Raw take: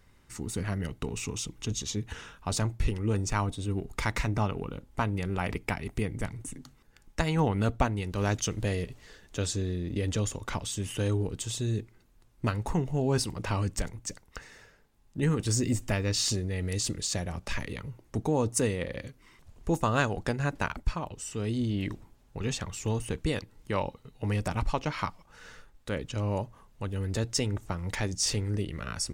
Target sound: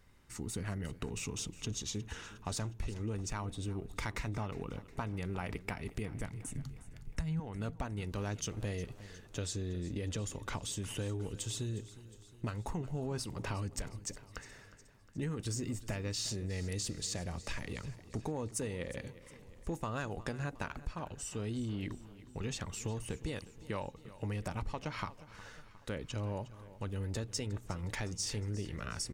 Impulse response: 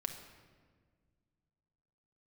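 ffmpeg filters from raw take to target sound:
-filter_complex "[0:a]asoftclip=type=tanh:threshold=-14.5dB,asettb=1/sr,asplit=3[link_01][link_02][link_03];[link_01]atrim=end=6.554[link_04];[link_02]atrim=start=6.55:end=7.4,asetpts=PTS-STARTPTS,afade=type=in:duration=0.004:curve=qsin,afade=type=out:start_time=0.846:duration=0.004:curve=qsin,lowshelf=frequency=210:width_type=q:width=1.5:gain=14[link_05];[link_03]atrim=start=7.396[link_06];[link_04][link_05]acrossfade=duration=0.004:curve1=hsin:curve2=qsin[link_07];[link_07][link_06]acrossfade=duration=0.004:curve1=qsin:curve2=hsin,acompressor=threshold=-31dB:ratio=6,aecho=1:1:360|720|1080|1440|1800:0.141|0.0791|0.0443|0.0248|0.0139,volume=-3.5dB"

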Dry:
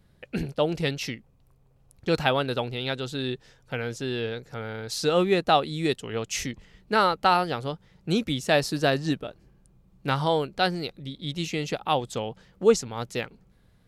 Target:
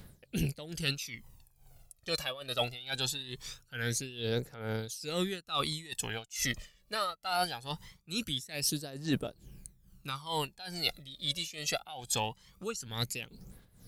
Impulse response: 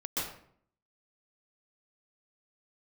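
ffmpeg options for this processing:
-af "crystalizer=i=5.5:c=0,aphaser=in_gain=1:out_gain=1:delay=1.8:decay=0.66:speed=0.22:type=triangular,areverse,acompressor=threshold=-27dB:ratio=16,areverse,tremolo=f=2.3:d=0.84"

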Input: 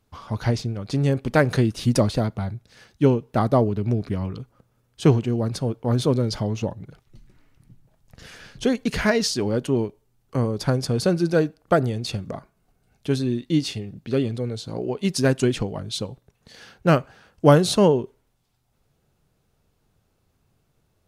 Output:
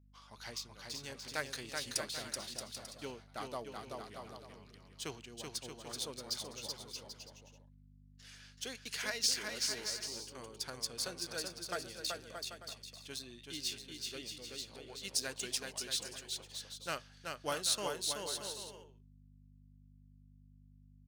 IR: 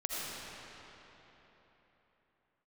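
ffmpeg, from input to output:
-af "adynamicsmooth=sensitivity=6:basefreq=6600,aderivative,agate=range=-33dB:threshold=-56dB:ratio=3:detection=peak,aeval=exprs='val(0)+0.000891*(sin(2*PI*50*n/s)+sin(2*PI*2*50*n/s)/2+sin(2*PI*3*50*n/s)/3+sin(2*PI*4*50*n/s)/4+sin(2*PI*5*50*n/s)/5)':channel_layout=same,aecho=1:1:380|627|787.6|891.9|959.7:0.631|0.398|0.251|0.158|0.1,volume=-2dB"

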